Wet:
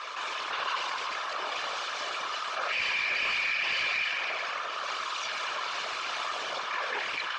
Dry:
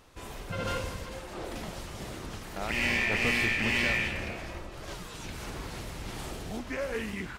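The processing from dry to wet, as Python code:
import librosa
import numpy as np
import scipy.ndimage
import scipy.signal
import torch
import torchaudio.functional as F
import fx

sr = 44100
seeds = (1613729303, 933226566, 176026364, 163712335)

y = fx.lower_of_two(x, sr, delay_ms=1.7)
y = scipy.signal.sosfilt(scipy.signal.cheby1(2, 1.0, [1200.0, 7400.0], 'bandpass', fs=sr, output='sos'), y)
y = fx.peak_eq(y, sr, hz=1900.0, db=-10.0, octaves=0.21)
y = y + 0.77 * np.pad(y, (int(4.7 * sr / 1000.0), 0))[:len(y)]
y = fx.whisperise(y, sr, seeds[0])
y = np.clip(y, -10.0 ** (-25.5 / 20.0), 10.0 ** (-25.5 / 20.0))
y = fx.air_absorb(y, sr, metres=190.0)
y = fx.env_flatten(y, sr, amount_pct=70)
y = y * 10.0 ** (3.5 / 20.0)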